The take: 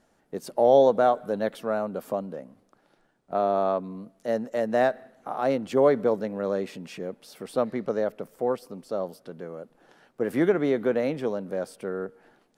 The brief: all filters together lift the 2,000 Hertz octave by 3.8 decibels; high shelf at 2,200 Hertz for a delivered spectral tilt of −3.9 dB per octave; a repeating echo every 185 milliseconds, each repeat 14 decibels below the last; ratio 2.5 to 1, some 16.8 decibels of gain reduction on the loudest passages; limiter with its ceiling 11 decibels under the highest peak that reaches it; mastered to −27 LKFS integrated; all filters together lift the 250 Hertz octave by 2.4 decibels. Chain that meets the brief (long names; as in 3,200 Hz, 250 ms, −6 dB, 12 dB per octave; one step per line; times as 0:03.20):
parametric band 250 Hz +3 dB
parametric band 2,000 Hz +8.5 dB
high-shelf EQ 2,200 Hz −7.5 dB
downward compressor 2.5 to 1, threshold −40 dBFS
brickwall limiter −34 dBFS
repeating echo 185 ms, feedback 20%, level −14 dB
level +17.5 dB